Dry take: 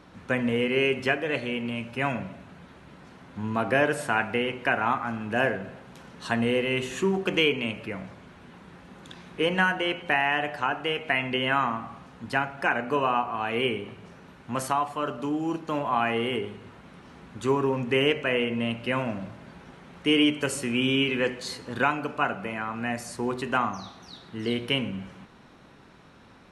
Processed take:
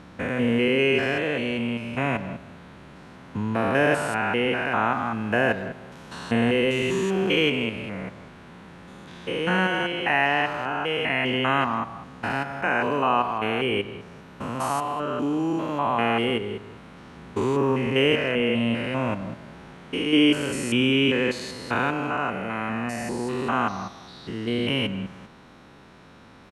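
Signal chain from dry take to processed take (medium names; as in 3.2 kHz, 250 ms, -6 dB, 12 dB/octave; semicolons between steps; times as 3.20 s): spectrogram pixelated in time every 200 ms; speakerphone echo 160 ms, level -16 dB; trim +5 dB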